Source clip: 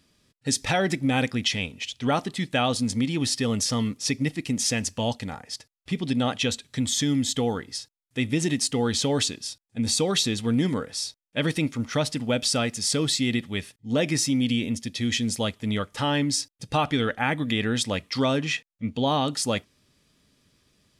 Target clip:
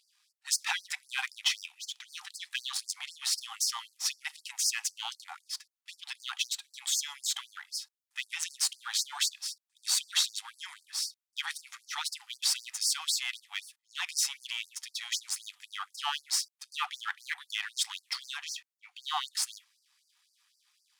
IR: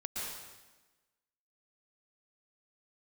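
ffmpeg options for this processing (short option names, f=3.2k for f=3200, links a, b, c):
-af "aeval=exprs='if(lt(val(0),0),0.447*val(0),val(0))':c=same,afftfilt=real='re*gte(b*sr/1024,710*pow(4500/710,0.5+0.5*sin(2*PI*3.9*pts/sr)))':imag='im*gte(b*sr/1024,710*pow(4500/710,0.5+0.5*sin(2*PI*3.9*pts/sr)))':win_size=1024:overlap=0.75"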